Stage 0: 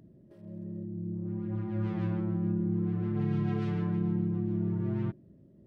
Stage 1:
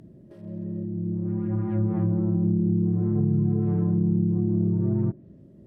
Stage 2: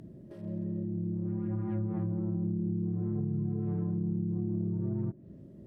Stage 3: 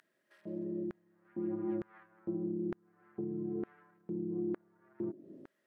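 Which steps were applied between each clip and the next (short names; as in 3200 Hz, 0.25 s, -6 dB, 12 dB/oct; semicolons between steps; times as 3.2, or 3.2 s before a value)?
treble ducked by the level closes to 360 Hz, closed at -25.5 dBFS; gain +7.5 dB
compressor 3:1, threshold -32 dBFS, peak gain reduction 10.5 dB
LFO high-pass square 1.1 Hz 320–1600 Hz; gain -3 dB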